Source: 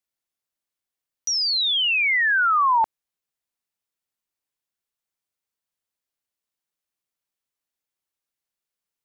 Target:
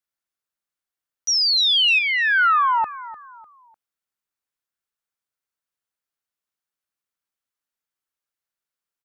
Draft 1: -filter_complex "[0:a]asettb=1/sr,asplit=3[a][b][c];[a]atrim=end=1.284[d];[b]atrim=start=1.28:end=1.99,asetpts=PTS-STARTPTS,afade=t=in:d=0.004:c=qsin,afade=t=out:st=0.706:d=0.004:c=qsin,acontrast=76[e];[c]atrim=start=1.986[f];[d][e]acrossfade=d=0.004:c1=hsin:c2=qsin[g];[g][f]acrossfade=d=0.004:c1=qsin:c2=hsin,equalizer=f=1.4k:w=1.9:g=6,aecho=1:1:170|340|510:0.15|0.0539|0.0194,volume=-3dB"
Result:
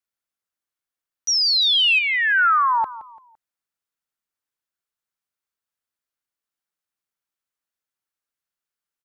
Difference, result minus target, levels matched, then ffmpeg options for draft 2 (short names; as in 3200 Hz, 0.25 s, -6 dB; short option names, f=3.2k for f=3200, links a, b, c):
echo 0.13 s early
-filter_complex "[0:a]asettb=1/sr,asplit=3[a][b][c];[a]atrim=end=1.284[d];[b]atrim=start=1.28:end=1.99,asetpts=PTS-STARTPTS,afade=t=in:d=0.004:c=qsin,afade=t=out:st=0.706:d=0.004:c=qsin,acontrast=76[e];[c]atrim=start=1.986[f];[d][e]acrossfade=d=0.004:c1=hsin:c2=qsin[g];[g][f]acrossfade=d=0.004:c1=qsin:c2=hsin,equalizer=f=1.4k:w=1.9:g=6,aecho=1:1:300|600|900:0.15|0.0539|0.0194,volume=-3dB"